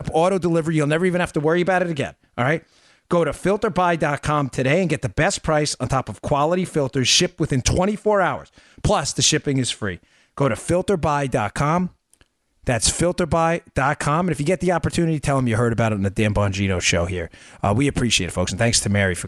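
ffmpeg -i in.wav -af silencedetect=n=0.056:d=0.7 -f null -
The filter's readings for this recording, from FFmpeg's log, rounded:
silence_start: 11.86
silence_end: 12.67 | silence_duration: 0.81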